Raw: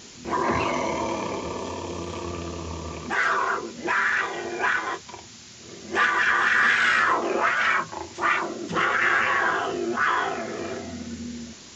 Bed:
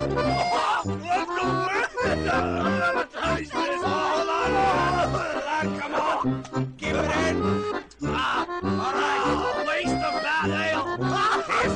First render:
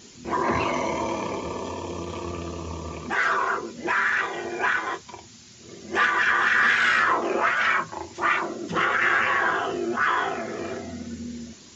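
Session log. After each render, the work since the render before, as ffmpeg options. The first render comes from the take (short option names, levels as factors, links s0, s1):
-af "afftdn=nr=6:nf=-45"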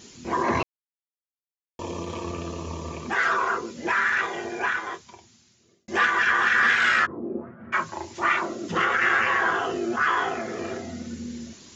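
-filter_complex "[0:a]asplit=3[s0][s1][s2];[s0]afade=t=out:st=7.05:d=0.02[s3];[s1]lowpass=f=240:t=q:w=1.5,afade=t=in:st=7.05:d=0.02,afade=t=out:st=7.72:d=0.02[s4];[s2]afade=t=in:st=7.72:d=0.02[s5];[s3][s4][s5]amix=inputs=3:normalize=0,asplit=4[s6][s7][s8][s9];[s6]atrim=end=0.63,asetpts=PTS-STARTPTS,afade=t=out:st=0.626:d=0.004:c=hsin[s10];[s7]atrim=start=0.63:end=1.79,asetpts=PTS-STARTPTS,volume=0[s11];[s8]atrim=start=1.79:end=5.88,asetpts=PTS-STARTPTS,afade=t=in:d=0.004:c=hsin,afade=t=out:st=2.53:d=1.56[s12];[s9]atrim=start=5.88,asetpts=PTS-STARTPTS,afade=t=in:d=0.004:c=hsin[s13];[s10][s11][s12][s13]concat=n=4:v=0:a=1"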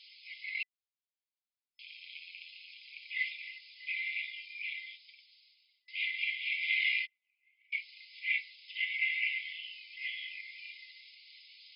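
-filter_complex "[0:a]acrossover=split=3100[s0][s1];[s1]acompressor=threshold=0.00316:ratio=4:attack=1:release=60[s2];[s0][s2]amix=inputs=2:normalize=0,afftfilt=real='re*between(b*sr/4096,2000,5200)':imag='im*between(b*sr/4096,2000,5200)':win_size=4096:overlap=0.75"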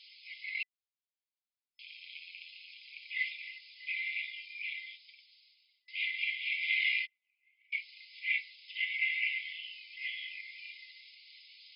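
-af anull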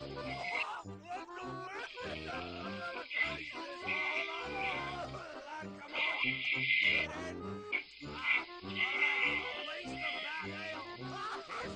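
-filter_complex "[1:a]volume=0.112[s0];[0:a][s0]amix=inputs=2:normalize=0"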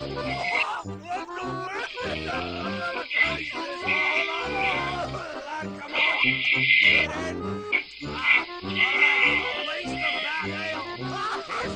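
-af "volume=3.98"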